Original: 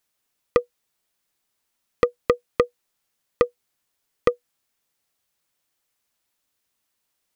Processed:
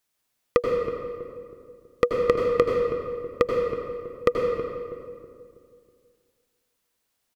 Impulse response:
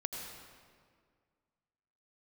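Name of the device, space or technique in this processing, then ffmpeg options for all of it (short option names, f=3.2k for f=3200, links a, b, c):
stairwell: -filter_complex "[0:a]asplit=2[a][b];[b]adelay=323,lowpass=f=900:p=1,volume=-10dB,asplit=2[c][d];[d]adelay=323,lowpass=f=900:p=1,volume=0.46,asplit=2[e][f];[f]adelay=323,lowpass=f=900:p=1,volume=0.46,asplit=2[g][h];[h]adelay=323,lowpass=f=900:p=1,volume=0.46,asplit=2[i][j];[j]adelay=323,lowpass=f=900:p=1,volume=0.46[k];[a][c][e][g][i][k]amix=inputs=6:normalize=0[l];[1:a]atrim=start_sample=2205[m];[l][m]afir=irnorm=-1:irlink=0"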